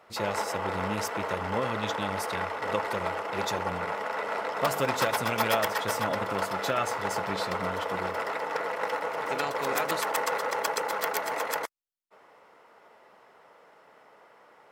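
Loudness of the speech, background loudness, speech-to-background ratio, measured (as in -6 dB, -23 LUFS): -34.0 LUFS, -31.0 LUFS, -3.0 dB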